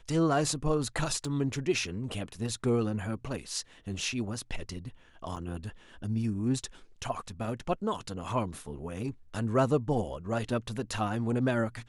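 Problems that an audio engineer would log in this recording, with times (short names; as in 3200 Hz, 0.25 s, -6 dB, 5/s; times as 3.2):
1.25 gap 2.6 ms
5.36–5.37 gap 6.1 ms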